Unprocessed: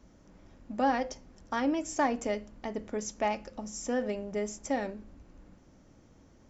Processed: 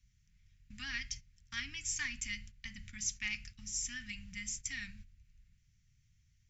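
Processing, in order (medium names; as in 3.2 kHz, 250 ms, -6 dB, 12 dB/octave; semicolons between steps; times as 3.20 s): gate -45 dBFS, range -12 dB; Chebyshev band-stop 130–2100 Hz, order 3; trim +4.5 dB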